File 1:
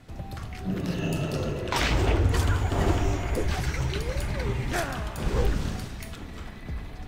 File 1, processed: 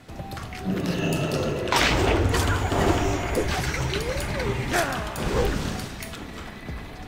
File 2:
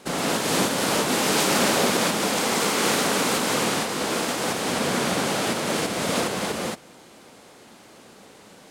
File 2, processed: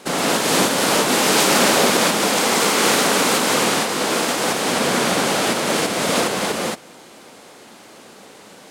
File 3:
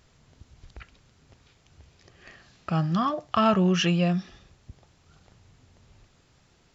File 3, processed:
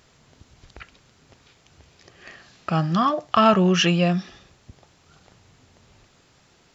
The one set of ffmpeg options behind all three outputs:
-af "lowshelf=f=120:g=-10.5,volume=6dB"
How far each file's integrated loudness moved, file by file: +3.5, +5.5, +4.5 LU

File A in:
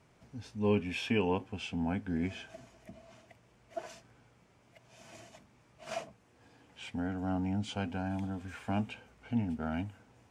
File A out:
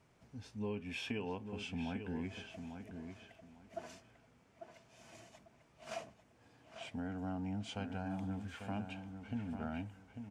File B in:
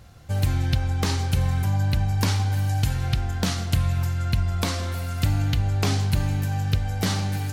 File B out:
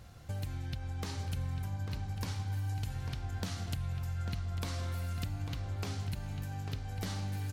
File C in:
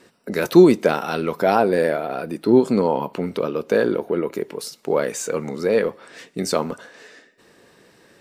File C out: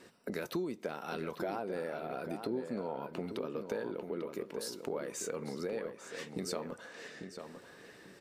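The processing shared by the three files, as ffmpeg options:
-filter_complex "[0:a]acompressor=threshold=-32dB:ratio=5,asplit=2[a][b];[b]adelay=846,lowpass=f=3.4k:p=1,volume=-7.5dB,asplit=2[c][d];[d]adelay=846,lowpass=f=3.4k:p=1,volume=0.23,asplit=2[e][f];[f]adelay=846,lowpass=f=3.4k:p=1,volume=0.23[g];[a][c][e][g]amix=inputs=4:normalize=0,volume=-4.5dB"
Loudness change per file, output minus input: -8.0, -14.0, -19.5 LU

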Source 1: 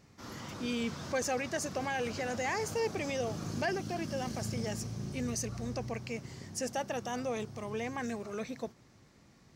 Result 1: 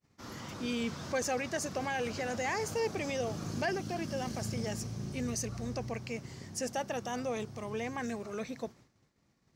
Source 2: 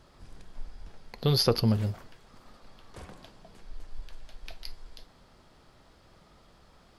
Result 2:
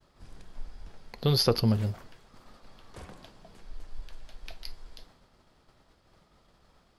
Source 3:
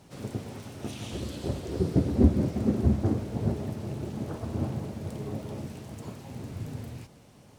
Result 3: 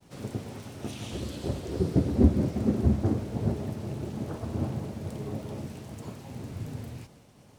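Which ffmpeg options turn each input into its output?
-af "agate=range=-33dB:threshold=-52dB:ratio=3:detection=peak"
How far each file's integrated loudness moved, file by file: 0.0, 0.0, 0.0 LU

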